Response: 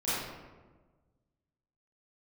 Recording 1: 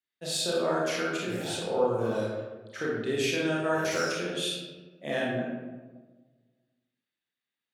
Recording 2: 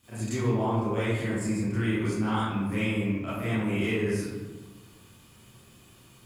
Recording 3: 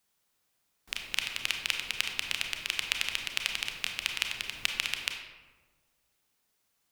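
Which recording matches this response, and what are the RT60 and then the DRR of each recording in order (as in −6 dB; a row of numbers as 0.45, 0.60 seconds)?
2; 1.3, 1.3, 1.4 seconds; −5.5, −13.5, 3.0 decibels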